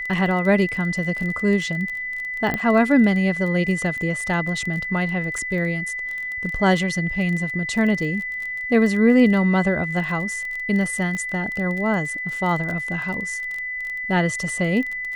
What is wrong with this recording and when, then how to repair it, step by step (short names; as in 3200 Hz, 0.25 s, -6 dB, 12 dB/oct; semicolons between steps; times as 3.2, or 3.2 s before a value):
crackle 23/s -27 dBFS
tone 2000 Hz -26 dBFS
2.54 pop -11 dBFS
5.38 gap 3.5 ms
11.15 pop -17 dBFS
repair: de-click; notch 2000 Hz, Q 30; interpolate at 5.38, 3.5 ms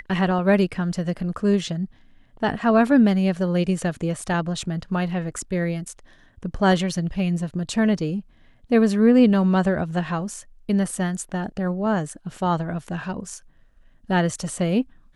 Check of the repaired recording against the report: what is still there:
11.15 pop